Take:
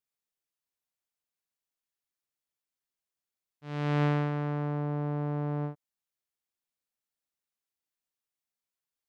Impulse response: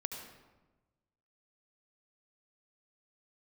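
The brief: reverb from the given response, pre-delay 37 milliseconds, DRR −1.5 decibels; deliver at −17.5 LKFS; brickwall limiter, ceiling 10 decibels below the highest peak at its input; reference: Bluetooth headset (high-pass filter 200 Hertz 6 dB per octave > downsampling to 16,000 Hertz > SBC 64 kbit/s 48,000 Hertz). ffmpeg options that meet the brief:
-filter_complex "[0:a]alimiter=level_in=5dB:limit=-24dB:level=0:latency=1,volume=-5dB,asplit=2[link_01][link_02];[1:a]atrim=start_sample=2205,adelay=37[link_03];[link_02][link_03]afir=irnorm=-1:irlink=0,volume=1.5dB[link_04];[link_01][link_04]amix=inputs=2:normalize=0,highpass=frequency=200:poles=1,aresample=16000,aresample=44100,volume=18.5dB" -ar 48000 -c:a sbc -b:a 64k

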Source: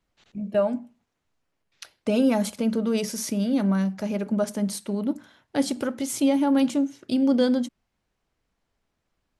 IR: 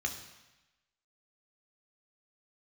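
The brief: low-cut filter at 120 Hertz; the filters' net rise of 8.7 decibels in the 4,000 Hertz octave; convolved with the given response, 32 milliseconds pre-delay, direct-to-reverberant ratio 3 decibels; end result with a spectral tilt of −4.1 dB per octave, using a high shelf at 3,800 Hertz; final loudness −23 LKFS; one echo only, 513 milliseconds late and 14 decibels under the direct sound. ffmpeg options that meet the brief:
-filter_complex "[0:a]highpass=120,highshelf=frequency=3800:gain=5,equalizer=frequency=4000:width_type=o:gain=8,aecho=1:1:513:0.2,asplit=2[link_01][link_02];[1:a]atrim=start_sample=2205,adelay=32[link_03];[link_02][link_03]afir=irnorm=-1:irlink=0,volume=-6.5dB[link_04];[link_01][link_04]amix=inputs=2:normalize=0,volume=-1dB"

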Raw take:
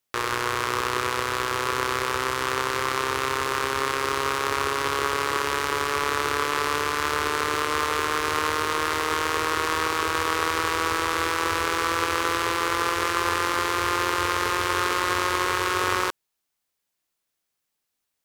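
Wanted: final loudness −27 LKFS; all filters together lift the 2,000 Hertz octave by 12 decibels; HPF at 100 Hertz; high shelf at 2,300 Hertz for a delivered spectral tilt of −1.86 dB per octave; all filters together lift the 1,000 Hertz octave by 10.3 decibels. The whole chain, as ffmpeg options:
ffmpeg -i in.wav -af "highpass=100,equalizer=frequency=1000:width_type=o:gain=7.5,equalizer=frequency=2000:width_type=o:gain=8.5,highshelf=frequency=2300:gain=8.5,volume=-13dB" out.wav

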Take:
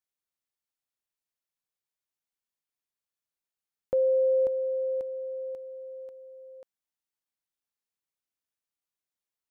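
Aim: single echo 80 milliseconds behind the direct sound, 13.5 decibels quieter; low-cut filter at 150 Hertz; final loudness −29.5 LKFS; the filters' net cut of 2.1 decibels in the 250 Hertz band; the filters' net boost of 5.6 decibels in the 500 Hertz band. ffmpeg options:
ffmpeg -i in.wav -af "highpass=150,equalizer=frequency=250:width_type=o:gain=-7,equalizer=frequency=500:width_type=o:gain=7,aecho=1:1:80:0.211,volume=-8.5dB" out.wav

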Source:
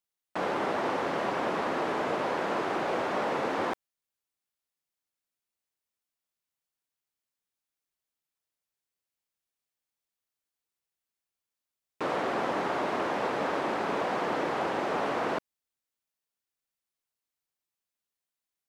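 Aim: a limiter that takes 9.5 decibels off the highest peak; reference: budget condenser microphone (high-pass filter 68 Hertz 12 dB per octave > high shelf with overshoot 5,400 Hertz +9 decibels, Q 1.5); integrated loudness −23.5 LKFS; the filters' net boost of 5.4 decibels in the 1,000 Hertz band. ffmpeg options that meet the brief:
ffmpeg -i in.wav -af "equalizer=frequency=1000:width_type=o:gain=7,alimiter=limit=-21.5dB:level=0:latency=1,highpass=68,highshelf=frequency=5400:width_type=q:width=1.5:gain=9,volume=7dB" out.wav

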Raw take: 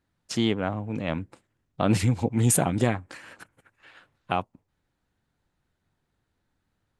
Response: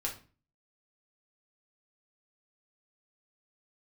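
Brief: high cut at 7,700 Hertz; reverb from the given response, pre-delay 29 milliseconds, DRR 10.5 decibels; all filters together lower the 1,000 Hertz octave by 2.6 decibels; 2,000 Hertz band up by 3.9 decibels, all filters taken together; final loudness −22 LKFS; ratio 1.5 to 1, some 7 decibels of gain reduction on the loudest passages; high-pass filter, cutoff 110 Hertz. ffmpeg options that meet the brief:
-filter_complex "[0:a]highpass=110,lowpass=7700,equalizer=frequency=1000:width_type=o:gain=-5.5,equalizer=frequency=2000:width_type=o:gain=6.5,acompressor=threshold=-38dB:ratio=1.5,asplit=2[link_01][link_02];[1:a]atrim=start_sample=2205,adelay=29[link_03];[link_02][link_03]afir=irnorm=-1:irlink=0,volume=-13dB[link_04];[link_01][link_04]amix=inputs=2:normalize=0,volume=11.5dB"

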